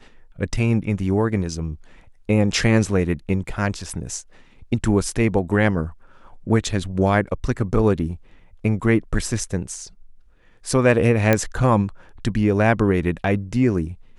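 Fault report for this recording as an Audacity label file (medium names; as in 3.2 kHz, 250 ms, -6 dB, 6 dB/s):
11.330000	11.330000	pop -4 dBFS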